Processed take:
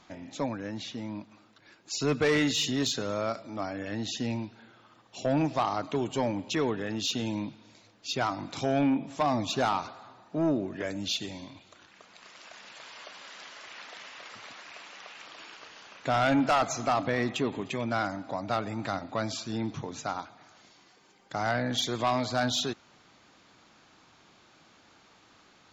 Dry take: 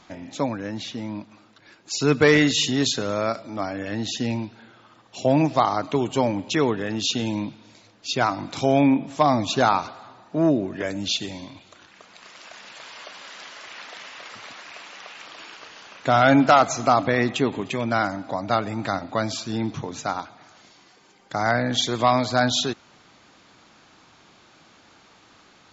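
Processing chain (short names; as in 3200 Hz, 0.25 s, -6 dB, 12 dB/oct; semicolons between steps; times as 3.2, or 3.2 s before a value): soft clip -13 dBFS, distortion -14 dB; gain -5.5 dB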